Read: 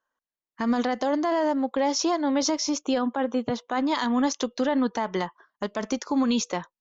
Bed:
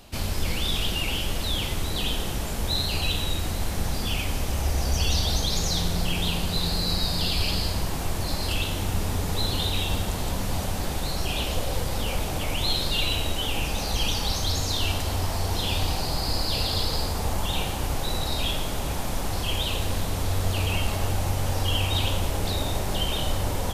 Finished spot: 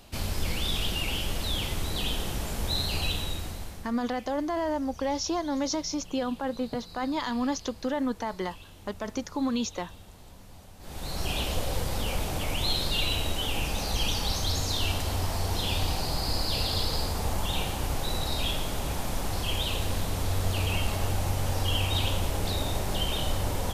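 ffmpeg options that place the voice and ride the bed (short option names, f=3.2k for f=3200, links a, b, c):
-filter_complex "[0:a]adelay=3250,volume=-5dB[a];[1:a]volume=16.5dB,afade=t=out:st=3.04:d=0.89:silence=0.112202,afade=t=in:st=10.79:d=0.49:silence=0.105925[b];[a][b]amix=inputs=2:normalize=0"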